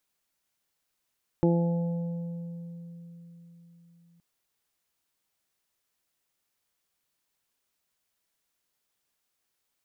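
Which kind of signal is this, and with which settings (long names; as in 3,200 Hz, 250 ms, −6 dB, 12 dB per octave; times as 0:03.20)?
harmonic partials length 2.77 s, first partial 170 Hz, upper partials 0.5/−5.5/−19/−13.5 dB, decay 4.41 s, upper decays 0.69/2.64/1.84/1.71 s, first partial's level −21 dB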